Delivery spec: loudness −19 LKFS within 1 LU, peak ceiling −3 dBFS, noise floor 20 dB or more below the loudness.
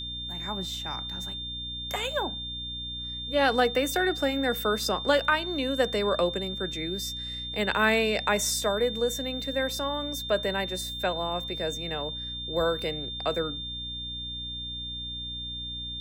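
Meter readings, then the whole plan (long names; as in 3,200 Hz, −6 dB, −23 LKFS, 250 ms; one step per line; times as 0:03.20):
mains hum 60 Hz; hum harmonics up to 300 Hz; level of the hum −40 dBFS; interfering tone 3,600 Hz; level of the tone −34 dBFS; integrated loudness −28.5 LKFS; sample peak −11.0 dBFS; target loudness −19.0 LKFS
→ hum removal 60 Hz, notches 5
notch filter 3,600 Hz, Q 30
level +9.5 dB
brickwall limiter −3 dBFS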